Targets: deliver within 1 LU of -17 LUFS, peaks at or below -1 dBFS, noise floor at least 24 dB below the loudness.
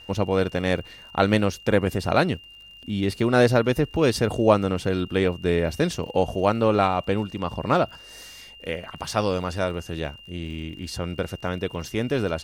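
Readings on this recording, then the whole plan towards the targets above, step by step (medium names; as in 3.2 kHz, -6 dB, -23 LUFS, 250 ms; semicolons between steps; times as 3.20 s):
tick rate 50 per s; steady tone 2.8 kHz; tone level -44 dBFS; loudness -24.0 LUFS; peak level -4.0 dBFS; loudness target -17.0 LUFS
-> de-click; band-stop 2.8 kHz, Q 30; trim +7 dB; peak limiter -1 dBFS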